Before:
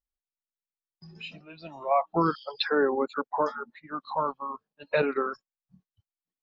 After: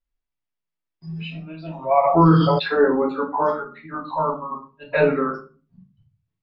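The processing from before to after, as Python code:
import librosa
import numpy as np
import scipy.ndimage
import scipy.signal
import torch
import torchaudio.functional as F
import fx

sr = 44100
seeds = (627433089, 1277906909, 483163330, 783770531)

y = scipy.signal.sosfilt(scipy.signal.butter(2, 3600.0, 'lowpass', fs=sr, output='sos'), x)
y = fx.peak_eq(y, sr, hz=150.0, db=12.0, octaves=0.35)
y = fx.room_shoebox(y, sr, seeds[0], volume_m3=190.0, walls='furnished', distance_m=2.9)
y = fx.env_flatten(y, sr, amount_pct=70, at=(2.03, 2.58), fade=0.02)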